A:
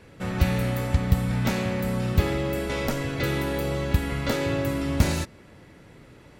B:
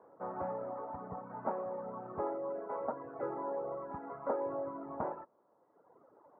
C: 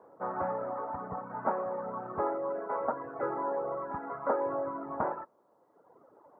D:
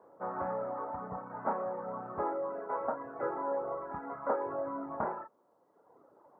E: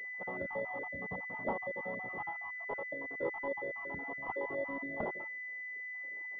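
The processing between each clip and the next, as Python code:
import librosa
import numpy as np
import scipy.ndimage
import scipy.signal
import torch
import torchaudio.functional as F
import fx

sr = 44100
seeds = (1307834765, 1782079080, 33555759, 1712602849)

y1 = scipy.signal.sosfilt(scipy.signal.butter(2, 670.0, 'highpass', fs=sr, output='sos'), x)
y1 = fx.dereverb_blind(y1, sr, rt60_s=1.4)
y1 = scipy.signal.sosfilt(scipy.signal.butter(6, 1100.0, 'lowpass', fs=sr, output='sos'), y1)
y1 = F.gain(torch.from_numpy(y1), 1.5).numpy()
y2 = fx.dynamic_eq(y1, sr, hz=1500.0, q=1.1, threshold_db=-55.0, ratio=4.0, max_db=7)
y2 = F.gain(torch.from_numpy(y2), 3.5).numpy()
y3 = fx.chorus_voices(y2, sr, voices=6, hz=0.41, base_ms=29, depth_ms=3.5, mix_pct=30)
y4 = fx.spec_dropout(y3, sr, seeds[0], share_pct=47)
y4 = fx.pwm(y4, sr, carrier_hz=2000.0)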